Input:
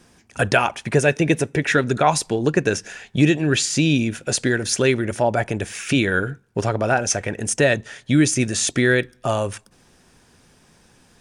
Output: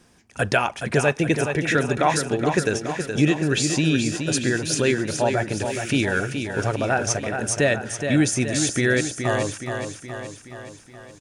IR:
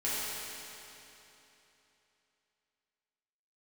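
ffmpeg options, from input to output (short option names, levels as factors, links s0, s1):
-af "aecho=1:1:421|842|1263|1684|2105|2526|2947:0.447|0.255|0.145|0.0827|0.0472|0.0269|0.0153,volume=0.708"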